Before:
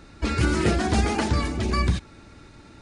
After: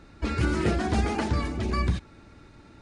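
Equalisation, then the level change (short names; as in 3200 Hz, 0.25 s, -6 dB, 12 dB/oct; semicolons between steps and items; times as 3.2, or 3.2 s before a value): high shelf 3800 Hz -6.5 dB; -3.0 dB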